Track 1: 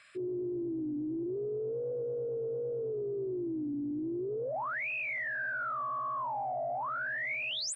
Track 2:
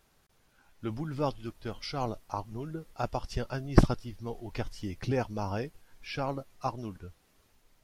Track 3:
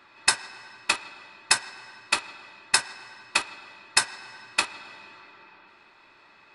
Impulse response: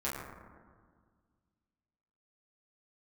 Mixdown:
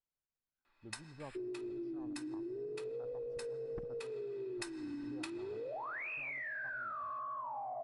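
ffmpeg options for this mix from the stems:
-filter_complex "[0:a]highpass=f=220:p=1,adelay=1200,volume=1dB,asplit=2[a][b];[b]volume=-16.5dB[c];[1:a]afwtdn=0.0112,volume=-17.5dB,asplit=3[d][e][f];[d]atrim=end=4.04,asetpts=PTS-STARTPTS,afade=t=out:st=4.036:d=0.004:c=hsin[g];[e]atrim=start=4.04:end=4.57,asetpts=PTS-STARTPTS,volume=0[h];[f]atrim=start=4.57,asetpts=PTS-STARTPTS,afade=t=in:d=0.004:c=hsin[i];[g][h][i]concat=n=3:v=0:a=1[j];[2:a]adelay=650,volume=-11dB,afade=t=in:st=3.86:d=0.78:silence=0.298538[k];[3:a]atrim=start_sample=2205[l];[c][l]afir=irnorm=-1:irlink=0[m];[a][j][k][m]amix=inputs=4:normalize=0,acompressor=threshold=-40dB:ratio=10"

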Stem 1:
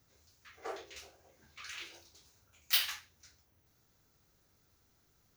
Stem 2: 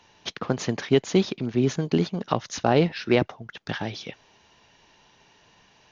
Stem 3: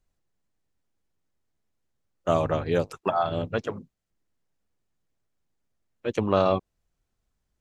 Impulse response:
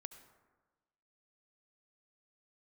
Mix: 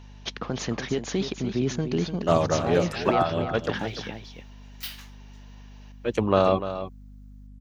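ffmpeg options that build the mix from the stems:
-filter_complex "[0:a]adelay=2100,volume=-7.5dB[a];[1:a]alimiter=limit=-16dB:level=0:latency=1:release=25,volume=-0.5dB,asplit=2[b][c];[c]volume=-9dB[d];[2:a]aeval=exprs='val(0)+0.00501*(sin(2*PI*50*n/s)+sin(2*PI*2*50*n/s)/2+sin(2*PI*3*50*n/s)/3+sin(2*PI*4*50*n/s)/4+sin(2*PI*5*50*n/s)/5)':c=same,volume=1.5dB,asplit=2[e][f];[f]volume=-11.5dB[g];[d][g]amix=inputs=2:normalize=0,aecho=0:1:296:1[h];[a][b][e][h]amix=inputs=4:normalize=0"

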